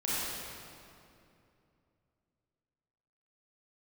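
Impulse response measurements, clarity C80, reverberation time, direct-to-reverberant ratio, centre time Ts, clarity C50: −3.5 dB, 2.7 s, −9.5 dB, 181 ms, −6.0 dB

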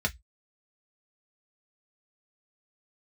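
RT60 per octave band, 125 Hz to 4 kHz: 0.25, 0.10, 0.10, 0.10, 0.15, 0.15 seconds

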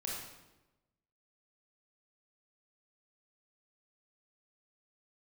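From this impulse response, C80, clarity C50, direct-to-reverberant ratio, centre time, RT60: 3.0 dB, 0.0 dB, −4.0 dB, 67 ms, 1.0 s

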